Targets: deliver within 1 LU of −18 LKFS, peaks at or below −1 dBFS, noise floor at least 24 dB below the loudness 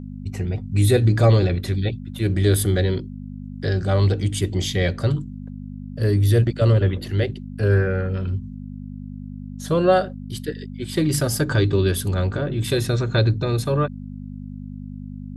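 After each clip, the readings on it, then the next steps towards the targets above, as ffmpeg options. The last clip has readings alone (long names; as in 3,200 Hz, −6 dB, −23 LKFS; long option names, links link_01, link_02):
mains hum 50 Hz; hum harmonics up to 250 Hz; level of the hum −30 dBFS; integrated loudness −21.0 LKFS; sample peak −4.5 dBFS; target loudness −18.0 LKFS
→ -af "bandreject=frequency=50:width_type=h:width=4,bandreject=frequency=100:width_type=h:width=4,bandreject=frequency=150:width_type=h:width=4,bandreject=frequency=200:width_type=h:width=4,bandreject=frequency=250:width_type=h:width=4"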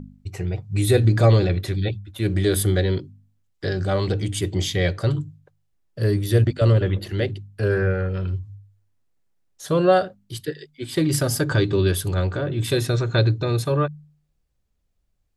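mains hum none found; integrated loudness −22.0 LKFS; sample peak −4.0 dBFS; target loudness −18.0 LKFS
→ -af "volume=4dB,alimiter=limit=-1dB:level=0:latency=1"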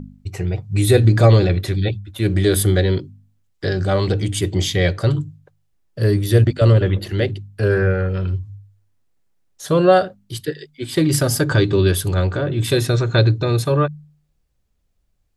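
integrated loudness −18.0 LKFS; sample peak −1.0 dBFS; background noise floor −66 dBFS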